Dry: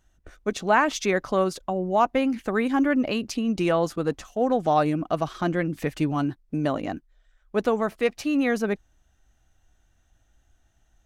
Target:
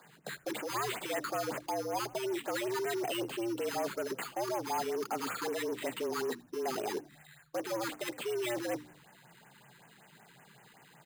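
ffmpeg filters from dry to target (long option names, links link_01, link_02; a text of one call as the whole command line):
ffmpeg -i in.wav -filter_complex "[0:a]deesser=0.85,asoftclip=type=hard:threshold=-21dB,areverse,acompressor=threshold=-36dB:ratio=16,areverse,bandreject=frequency=60:width_type=h:width=6,bandreject=frequency=120:width_type=h:width=6,bandreject=frequency=180:width_type=h:width=6,asplit=2[link_01][link_02];[link_02]highpass=frequency=720:poles=1,volume=24dB,asoftclip=type=tanh:threshold=-26.5dB[link_03];[link_01][link_03]amix=inputs=2:normalize=0,lowpass=frequency=3700:poles=1,volume=-6dB,acrusher=samples=8:mix=1:aa=0.000001,afreqshift=120,asplit=2[link_04][link_05];[link_05]asplit=3[link_06][link_07][link_08];[link_06]adelay=82,afreqshift=-75,volume=-22.5dB[link_09];[link_07]adelay=164,afreqshift=-150,volume=-29.6dB[link_10];[link_08]adelay=246,afreqshift=-225,volume=-36.8dB[link_11];[link_09][link_10][link_11]amix=inputs=3:normalize=0[link_12];[link_04][link_12]amix=inputs=2:normalize=0,afftfilt=real='re*(1-between(b*sr/1024,580*pow(4500/580,0.5+0.5*sin(2*PI*5.3*pts/sr))/1.41,580*pow(4500/580,0.5+0.5*sin(2*PI*5.3*pts/sr))*1.41))':imag='im*(1-between(b*sr/1024,580*pow(4500/580,0.5+0.5*sin(2*PI*5.3*pts/sr))/1.41,580*pow(4500/580,0.5+0.5*sin(2*PI*5.3*pts/sr))*1.41))':win_size=1024:overlap=0.75" out.wav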